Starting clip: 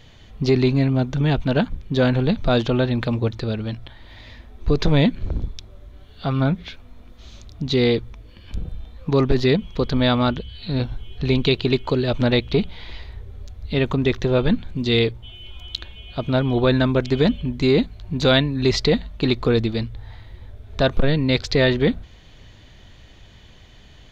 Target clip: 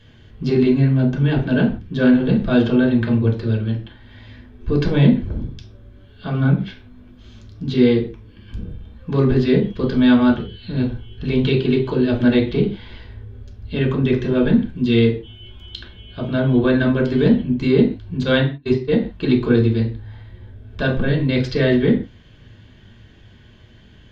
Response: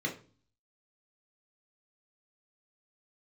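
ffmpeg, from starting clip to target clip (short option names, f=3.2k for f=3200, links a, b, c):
-filter_complex "[0:a]asettb=1/sr,asplit=3[a][b][c];[a]atrim=end=18.234[d];[b]atrim=start=18.23:end=19.02,asetpts=PTS-STARTPTS,afade=t=in:d=0.004:c=qsin,afade=t=out:st=0.786:d=0.004:c=qsin,agate=range=-34dB:threshold=-16dB:ratio=16:detection=peak[e];[c]atrim=start=19.016[f];[d][e]acrossfade=d=0.004:c1=hsin:c2=qsin[g];[g][f]acrossfade=d=0.004:c1=qsin:c2=hsin[h];[1:a]atrim=start_sample=2205,atrim=end_sample=6174,asetrate=33957,aresample=44100[i];[h][i]afir=irnorm=-1:irlink=0,volume=-7.5dB"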